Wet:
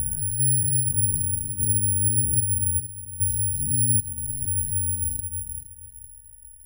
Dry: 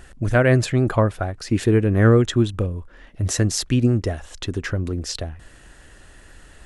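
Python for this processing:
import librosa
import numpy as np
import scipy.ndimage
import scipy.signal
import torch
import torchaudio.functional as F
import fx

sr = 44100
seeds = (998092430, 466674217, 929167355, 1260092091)

y = fx.spec_steps(x, sr, hold_ms=400)
y = fx.tone_stack(y, sr, knobs='6-0-2')
y = fx.rider(y, sr, range_db=4, speed_s=0.5)
y = fx.air_absorb(y, sr, metres=100.0)
y = fx.echo_feedback(y, sr, ms=465, feedback_pct=30, wet_db=-9.0)
y = (np.kron(y[::4], np.eye(4)[0]) * 4)[:len(y)]
y = fx.spectral_expand(y, sr, expansion=1.5)
y = y * 10.0 ** (8.5 / 20.0)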